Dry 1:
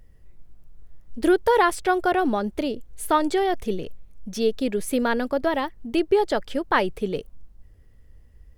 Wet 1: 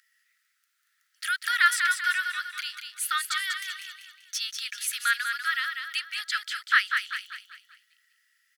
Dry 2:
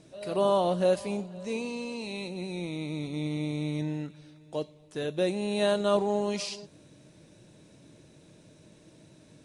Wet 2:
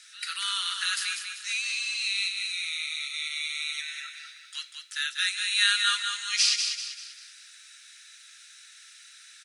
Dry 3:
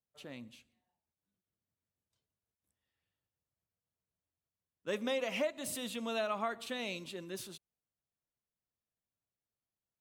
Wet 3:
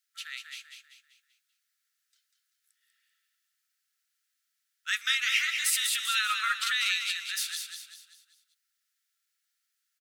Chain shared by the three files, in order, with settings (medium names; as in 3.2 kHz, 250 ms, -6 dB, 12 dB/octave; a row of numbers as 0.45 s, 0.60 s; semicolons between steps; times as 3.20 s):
rippled Chebyshev high-pass 1.3 kHz, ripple 3 dB; on a send: feedback delay 194 ms, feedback 42%, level -6 dB; on the sum: normalise loudness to -27 LUFS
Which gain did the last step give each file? +6.0 dB, +14.5 dB, +16.0 dB